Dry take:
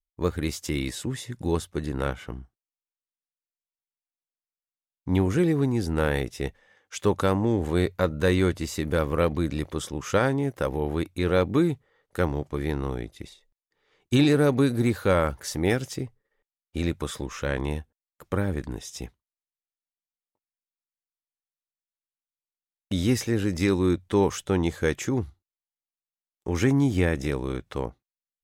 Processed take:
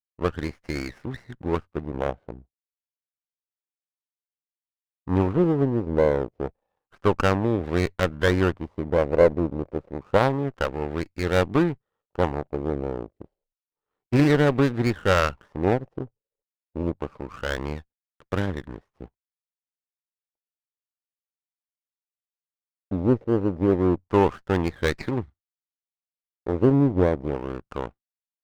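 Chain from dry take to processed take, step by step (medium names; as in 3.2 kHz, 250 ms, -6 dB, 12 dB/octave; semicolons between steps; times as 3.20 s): LFO low-pass sine 0.29 Hz 550–2200 Hz; power-law waveshaper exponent 1.4; sliding maximum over 9 samples; trim +4.5 dB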